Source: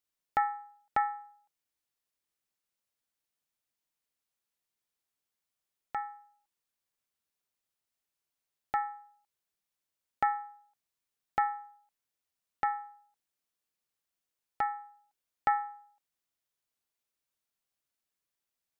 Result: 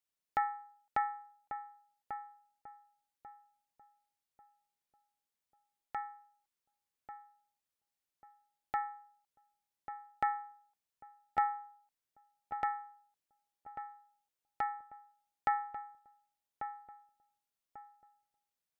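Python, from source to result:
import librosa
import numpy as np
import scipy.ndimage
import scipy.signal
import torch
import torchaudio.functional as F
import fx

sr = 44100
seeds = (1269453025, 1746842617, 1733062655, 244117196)

y = fx.echo_filtered(x, sr, ms=1142, feedback_pct=34, hz=1200.0, wet_db=-8)
y = y * librosa.db_to_amplitude(-4.0)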